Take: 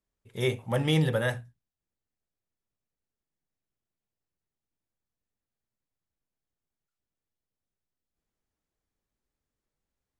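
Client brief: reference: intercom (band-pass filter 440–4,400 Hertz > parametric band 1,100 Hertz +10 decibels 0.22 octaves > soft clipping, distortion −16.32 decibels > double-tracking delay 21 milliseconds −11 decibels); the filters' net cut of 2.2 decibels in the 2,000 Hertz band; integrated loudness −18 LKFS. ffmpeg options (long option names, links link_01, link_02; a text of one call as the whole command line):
ffmpeg -i in.wav -filter_complex "[0:a]highpass=440,lowpass=4400,equalizer=frequency=1100:width_type=o:width=0.22:gain=10,equalizer=frequency=2000:width_type=o:gain=-3,asoftclip=threshold=-24dB,asplit=2[link_01][link_02];[link_02]adelay=21,volume=-11dB[link_03];[link_01][link_03]amix=inputs=2:normalize=0,volume=16.5dB" out.wav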